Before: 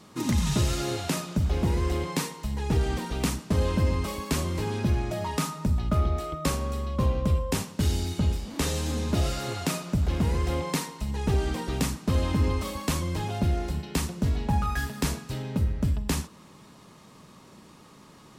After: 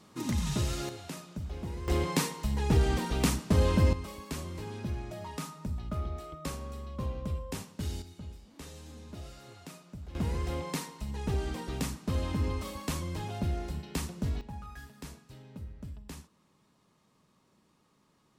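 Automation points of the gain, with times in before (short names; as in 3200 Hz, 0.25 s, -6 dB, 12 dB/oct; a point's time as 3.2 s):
-6 dB
from 0.89 s -13 dB
from 1.88 s 0 dB
from 3.93 s -10.5 dB
from 8.02 s -19 dB
from 10.15 s -6.5 dB
from 14.41 s -17.5 dB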